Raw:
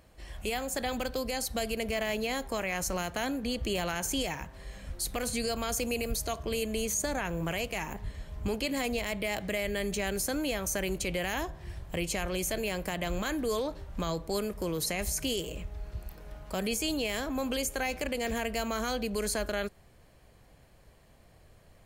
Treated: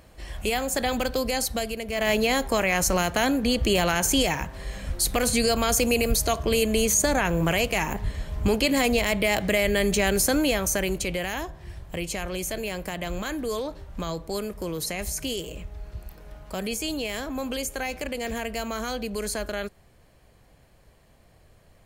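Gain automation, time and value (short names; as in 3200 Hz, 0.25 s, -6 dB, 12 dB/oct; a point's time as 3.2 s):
1.44 s +7 dB
1.86 s -1 dB
2.08 s +9.5 dB
10.37 s +9.5 dB
11.42 s +1.5 dB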